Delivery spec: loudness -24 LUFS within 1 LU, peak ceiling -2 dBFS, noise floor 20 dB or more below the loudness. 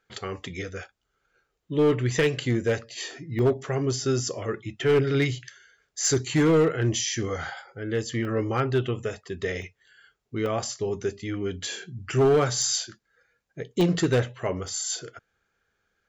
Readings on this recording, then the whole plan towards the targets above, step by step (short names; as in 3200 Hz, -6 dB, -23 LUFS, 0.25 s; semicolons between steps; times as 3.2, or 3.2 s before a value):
clipped 1.2%; flat tops at -15.5 dBFS; dropouts 6; longest dropout 1.1 ms; loudness -26.0 LUFS; peak -15.5 dBFS; loudness target -24.0 LUFS
-> clip repair -15.5 dBFS; interpolate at 3.39/8.25/9.62/10.46/13.81/14.68, 1.1 ms; gain +2 dB